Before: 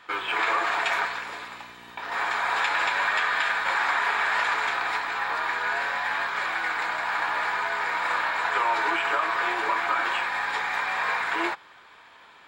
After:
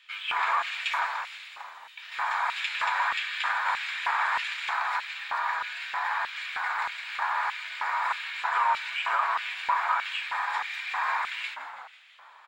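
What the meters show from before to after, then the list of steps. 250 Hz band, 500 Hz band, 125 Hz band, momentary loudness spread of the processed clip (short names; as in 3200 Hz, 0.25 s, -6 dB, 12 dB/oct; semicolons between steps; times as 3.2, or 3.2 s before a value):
under -25 dB, -11.5 dB, n/a, 9 LU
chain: frequency-shifting echo 0.164 s, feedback 61%, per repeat -64 Hz, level -11.5 dB; LFO high-pass square 1.6 Hz 950–2700 Hz; gain -6.5 dB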